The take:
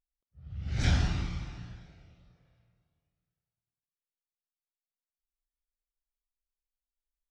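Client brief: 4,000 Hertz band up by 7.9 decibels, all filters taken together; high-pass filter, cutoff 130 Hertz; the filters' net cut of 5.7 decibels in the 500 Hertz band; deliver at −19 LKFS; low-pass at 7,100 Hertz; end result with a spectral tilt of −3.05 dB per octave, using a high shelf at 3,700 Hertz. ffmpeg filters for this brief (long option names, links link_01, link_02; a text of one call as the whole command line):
ffmpeg -i in.wav -af "highpass=130,lowpass=7100,equalizer=frequency=500:width_type=o:gain=-8.5,highshelf=frequency=3700:gain=8.5,equalizer=frequency=4000:width_type=o:gain=5,volume=14dB" out.wav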